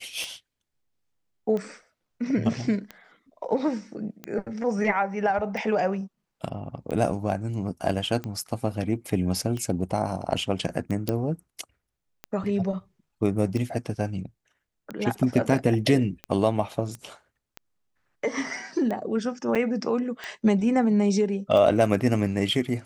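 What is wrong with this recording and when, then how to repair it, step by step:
scratch tick 45 rpm −20 dBFS
0:11.09: click −12 dBFS
0:16.95: click −24 dBFS
0:19.55–0:19.56: drop-out 6.3 ms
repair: click removal
repair the gap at 0:19.55, 6.3 ms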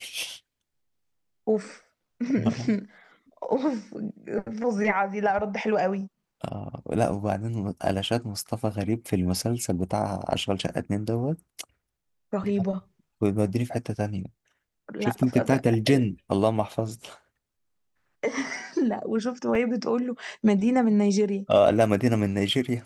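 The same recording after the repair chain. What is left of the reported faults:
none of them is left

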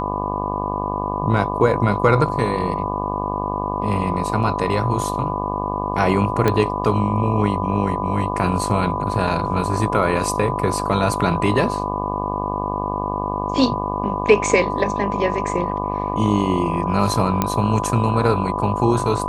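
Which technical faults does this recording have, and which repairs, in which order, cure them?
mains buzz 50 Hz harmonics 24 −26 dBFS
whistle 1,000 Hz −26 dBFS
0:06.48: click −5 dBFS
0:17.42: click −4 dBFS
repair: click removal
notch filter 1,000 Hz, Q 30
hum removal 50 Hz, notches 24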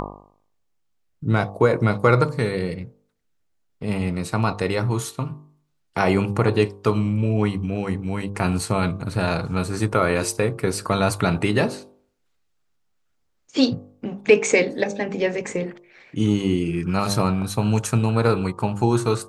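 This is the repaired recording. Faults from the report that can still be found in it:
none of them is left

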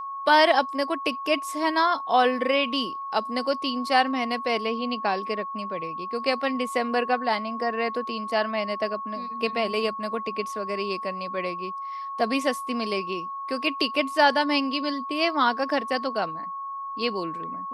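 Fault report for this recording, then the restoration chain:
whistle 1,100 Hz −31 dBFS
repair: notch filter 1,100 Hz, Q 30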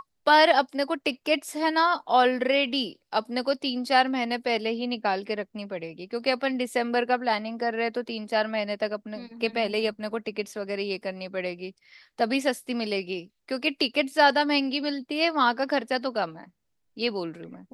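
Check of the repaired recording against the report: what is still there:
none of them is left

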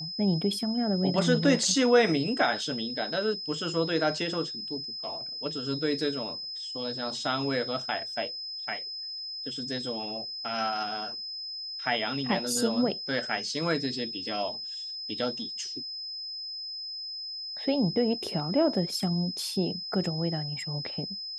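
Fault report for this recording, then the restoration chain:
whistle 5,100 Hz −35 dBFS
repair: notch filter 5,100 Hz, Q 30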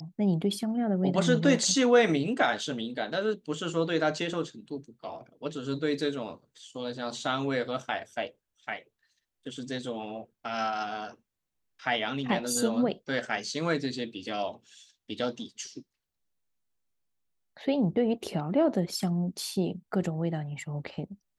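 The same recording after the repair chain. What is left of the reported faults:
none of them is left

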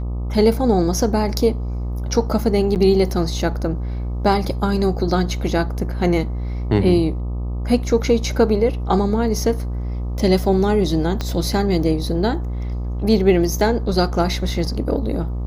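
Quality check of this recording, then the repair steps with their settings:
mains buzz 60 Hz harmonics 21 −24 dBFS
0:02.75–0:02.76: drop-out 8.4 ms
0:11.21: click −10 dBFS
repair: click removal
hum removal 60 Hz, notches 21
repair the gap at 0:02.75, 8.4 ms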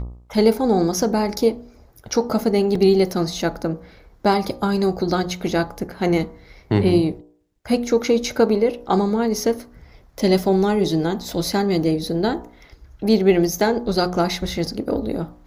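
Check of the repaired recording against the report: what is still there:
0:11.21: click

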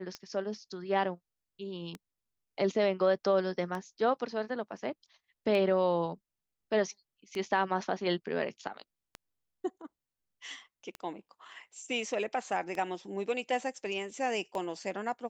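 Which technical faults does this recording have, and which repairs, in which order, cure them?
scratch tick 33 1/3 rpm −24 dBFS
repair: click removal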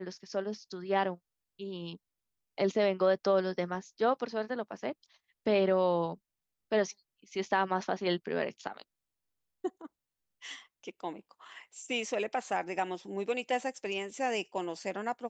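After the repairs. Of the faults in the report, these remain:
none of them is left

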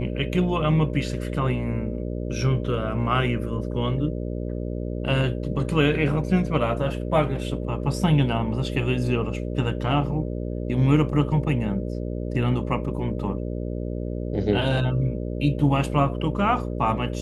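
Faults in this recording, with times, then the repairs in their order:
mains buzz 60 Hz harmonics 10 −29 dBFS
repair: hum removal 60 Hz, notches 10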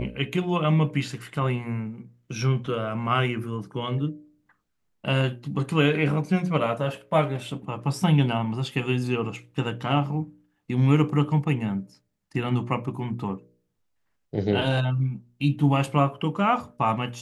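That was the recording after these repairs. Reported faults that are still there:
none of them is left

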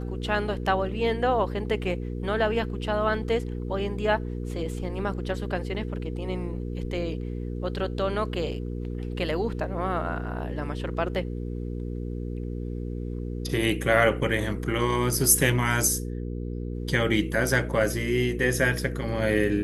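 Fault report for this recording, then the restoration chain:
mains hum 60 Hz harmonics 8 −32 dBFS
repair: hum removal 60 Hz, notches 8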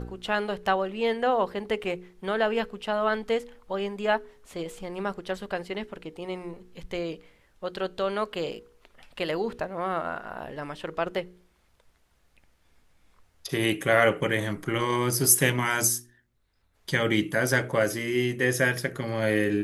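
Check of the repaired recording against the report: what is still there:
none of them is left

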